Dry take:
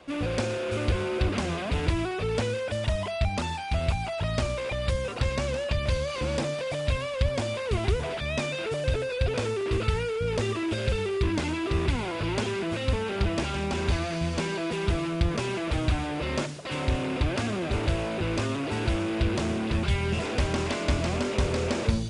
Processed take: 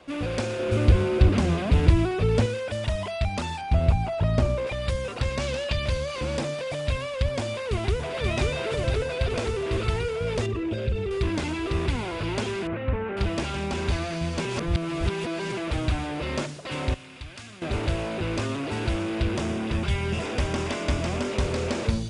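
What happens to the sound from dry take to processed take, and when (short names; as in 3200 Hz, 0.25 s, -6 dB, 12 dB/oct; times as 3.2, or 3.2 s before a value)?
0.59–2.46 low shelf 370 Hz +9.5 dB
3.61–4.67 tilt shelf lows +6.5 dB, about 1200 Hz
5.4–5.88 bell 3800 Hz +5.5 dB 1.6 oct
7.61–8.22 echo throw 0.53 s, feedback 75%, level -1.5 dB
10.46–11.11 formant sharpening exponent 1.5
12.67–13.17 LPF 2200 Hz 24 dB/oct
14.45–15.52 reverse
16.94–17.62 passive tone stack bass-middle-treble 5-5-5
19.32–21.3 notch 4200 Hz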